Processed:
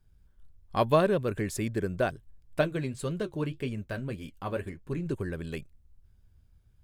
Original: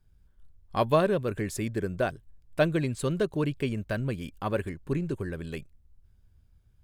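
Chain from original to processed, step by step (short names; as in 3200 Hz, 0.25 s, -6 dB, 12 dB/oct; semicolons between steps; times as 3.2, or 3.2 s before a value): 2.61–5.06 flange 1.8 Hz, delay 7.1 ms, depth 6 ms, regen -52%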